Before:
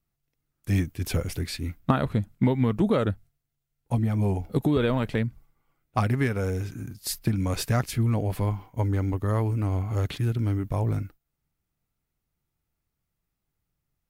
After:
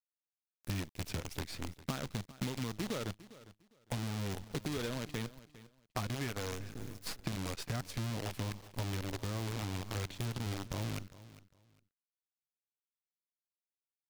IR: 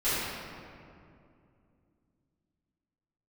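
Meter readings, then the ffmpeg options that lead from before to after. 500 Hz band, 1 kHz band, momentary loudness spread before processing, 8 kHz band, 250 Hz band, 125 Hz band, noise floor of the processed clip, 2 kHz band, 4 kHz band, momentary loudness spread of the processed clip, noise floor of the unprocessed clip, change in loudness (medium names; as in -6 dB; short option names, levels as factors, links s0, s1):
-14.0 dB, -12.0 dB, 8 LU, -6.0 dB, -14.0 dB, -14.0 dB, under -85 dBFS, -8.0 dB, -4.0 dB, 8 LU, -82 dBFS, -13.0 dB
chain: -filter_complex "[0:a]acrusher=bits=5:dc=4:mix=0:aa=0.000001,acrossover=split=2900|6700[s0][s1][s2];[s0]acompressor=threshold=0.0178:ratio=4[s3];[s1]acompressor=threshold=0.00708:ratio=4[s4];[s2]acompressor=threshold=0.00316:ratio=4[s5];[s3][s4][s5]amix=inputs=3:normalize=0,aecho=1:1:404|808:0.133|0.028,volume=0.75"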